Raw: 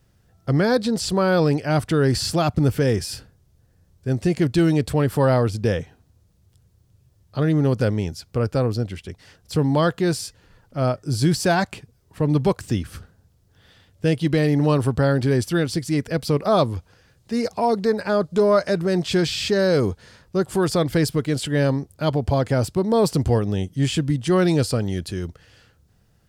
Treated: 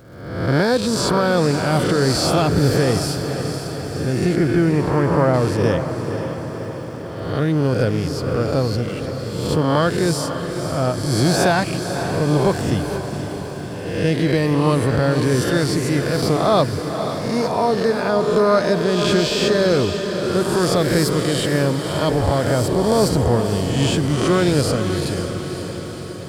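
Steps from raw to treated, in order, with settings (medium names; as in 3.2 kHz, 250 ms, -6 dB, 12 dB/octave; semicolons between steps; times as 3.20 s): reverse spectral sustain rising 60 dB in 1.00 s; 4.35–5.34 s: low-pass 2.4 kHz 24 dB/octave; crackle 450 per s -45 dBFS; echo that smears into a reverb 521 ms, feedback 64%, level -8 dB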